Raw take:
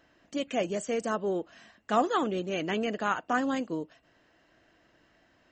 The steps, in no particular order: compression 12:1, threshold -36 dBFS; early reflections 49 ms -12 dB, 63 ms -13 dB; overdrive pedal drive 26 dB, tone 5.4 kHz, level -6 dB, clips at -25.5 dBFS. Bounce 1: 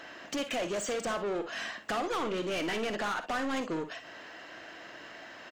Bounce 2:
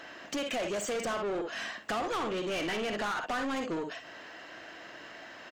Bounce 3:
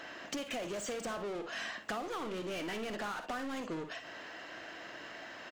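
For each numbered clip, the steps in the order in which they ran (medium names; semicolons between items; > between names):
compression > overdrive pedal > early reflections; early reflections > compression > overdrive pedal; overdrive pedal > early reflections > compression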